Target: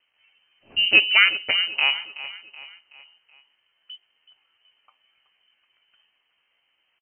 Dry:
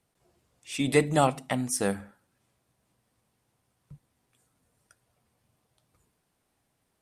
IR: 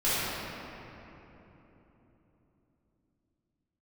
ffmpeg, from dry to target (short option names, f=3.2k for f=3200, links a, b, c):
-filter_complex "[0:a]asetrate=62367,aresample=44100,atempo=0.707107,asplit=2[a][b];[b]aecho=0:1:376|752|1128|1504:0.178|0.0818|0.0376|0.0173[c];[a][c]amix=inputs=2:normalize=0,lowpass=f=2.7k:t=q:w=0.5098,lowpass=f=2.7k:t=q:w=0.6013,lowpass=f=2.7k:t=q:w=0.9,lowpass=f=2.7k:t=q:w=2.563,afreqshift=-3200,volume=6.5dB"